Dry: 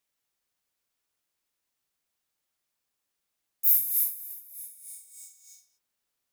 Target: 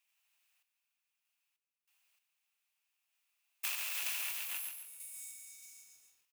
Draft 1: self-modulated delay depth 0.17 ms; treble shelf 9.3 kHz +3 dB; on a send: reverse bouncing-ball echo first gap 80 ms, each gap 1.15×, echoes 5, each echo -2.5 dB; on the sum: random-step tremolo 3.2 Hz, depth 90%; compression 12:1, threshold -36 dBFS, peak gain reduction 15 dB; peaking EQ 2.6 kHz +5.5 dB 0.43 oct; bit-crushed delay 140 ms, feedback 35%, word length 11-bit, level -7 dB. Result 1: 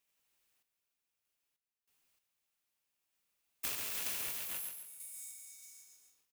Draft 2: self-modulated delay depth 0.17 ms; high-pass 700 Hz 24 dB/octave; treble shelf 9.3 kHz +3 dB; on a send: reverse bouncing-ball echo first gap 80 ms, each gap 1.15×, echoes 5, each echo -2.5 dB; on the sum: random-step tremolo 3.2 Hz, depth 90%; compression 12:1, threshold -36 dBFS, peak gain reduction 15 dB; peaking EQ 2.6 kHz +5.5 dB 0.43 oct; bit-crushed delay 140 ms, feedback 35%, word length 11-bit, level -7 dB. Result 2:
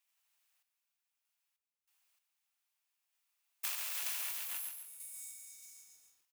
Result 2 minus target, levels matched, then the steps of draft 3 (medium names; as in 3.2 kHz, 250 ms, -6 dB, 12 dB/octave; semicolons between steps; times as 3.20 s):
2 kHz band -4.0 dB
self-modulated delay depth 0.17 ms; high-pass 700 Hz 24 dB/octave; treble shelf 9.3 kHz +3 dB; on a send: reverse bouncing-ball echo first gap 80 ms, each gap 1.15×, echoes 5, each echo -2.5 dB; on the sum: random-step tremolo 3.2 Hz, depth 90%; compression 12:1, threshold -36 dBFS, peak gain reduction 15 dB; peaking EQ 2.6 kHz +13 dB 0.43 oct; bit-crushed delay 140 ms, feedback 35%, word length 11-bit, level -7 dB